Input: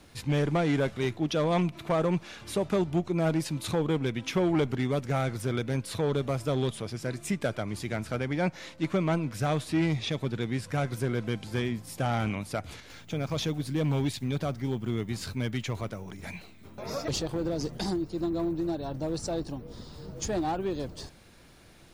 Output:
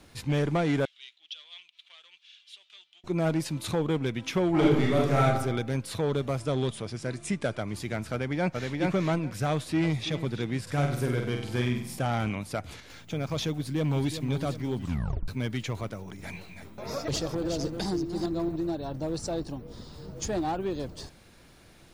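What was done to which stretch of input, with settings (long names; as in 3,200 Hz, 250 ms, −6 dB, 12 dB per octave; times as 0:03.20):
0:00.85–0:03.04: four-pole ladder band-pass 3,500 Hz, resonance 65%
0:04.50–0:05.25: thrown reverb, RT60 0.85 s, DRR −4.5 dB
0:06.40–0:07.61: Butterworth low-pass 11,000 Hz 96 dB per octave
0:08.12–0:08.78: delay throw 420 ms, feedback 15%, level −2 dB
0:09.50–0:10.10: delay throw 330 ms, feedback 40%, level −13.5 dB
0:10.62–0:11.99: flutter between parallel walls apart 8.3 metres, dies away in 0.59 s
0:13.58–0:14.24: delay throw 370 ms, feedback 55%, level −10 dB
0:14.76: tape stop 0.52 s
0:15.98–0:18.56: delay that plays each chunk backwards 228 ms, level −7 dB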